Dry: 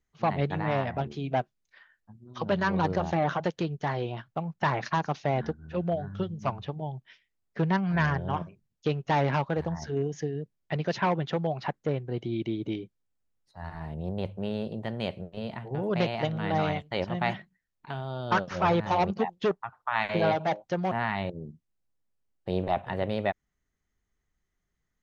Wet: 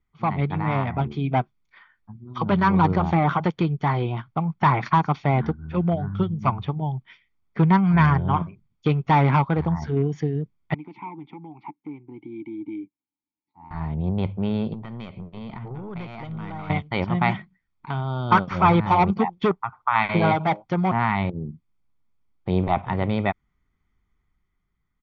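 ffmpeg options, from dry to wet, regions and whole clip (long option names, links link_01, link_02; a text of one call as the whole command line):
ffmpeg -i in.wav -filter_complex "[0:a]asettb=1/sr,asplit=3[link_01][link_02][link_03];[link_01]atrim=end=10.744[link_04];[link_02]atrim=start=10.74:end=13.71,asetpts=PTS-STARTPTS,afade=type=in:duration=0.004:curve=qsin,afade=type=out:start_time=2.966:duration=0.004:curve=qsin,acompressor=threshold=-29dB:ratio=2.5:attack=3.2:release=140:knee=1:detection=peak,asplit=3[link_05][link_06][link_07];[link_05]bandpass=frequency=300:width_type=q:width=8,volume=0dB[link_08];[link_06]bandpass=frequency=870:width_type=q:width=8,volume=-6dB[link_09];[link_07]bandpass=frequency=2240:width_type=q:width=8,volume=-9dB[link_10];[link_08][link_09][link_10]amix=inputs=3:normalize=0[link_11];[link_03]atrim=start=13.706[link_12];[link_04][link_11]acrossfade=duration=0.004:curve1=hsin:curve2=qsin[link_13];[link_13][link_12]acrossfade=duration=0.004:curve1=qsin:curve2=hsin,asettb=1/sr,asplit=3[link_14][link_15][link_16];[link_14]atrim=end=14.734[link_17];[link_15]atrim=start=14.73:end=16.7,asetpts=PTS-STARTPTS,afade=type=in:duration=0.004:curve=qsin,afade=type=out:start_time=1.966:duration=0.004:curve=qsin,acompressor=threshold=-37dB:ratio=4:attack=3.2:release=140:knee=1:detection=peak,aeval=exprs='(tanh(35.5*val(0)+0.4)-tanh(0.4))/35.5':channel_layout=same[link_18];[link_16]atrim=start=16.696[link_19];[link_17][link_18]acrossfade=duration=0.004:curve1=hsin:curve2=qsin[link_20];[link_20][link_19]acrossfade=duration=0.004:curve1=qsin:curve2=hsin,lowpass=2900,aecho=1:1:0.9:0.56,dynaudnorm=framelen=130:gausssize=13:maxgain=4.5dB,volume=2dB" out.wav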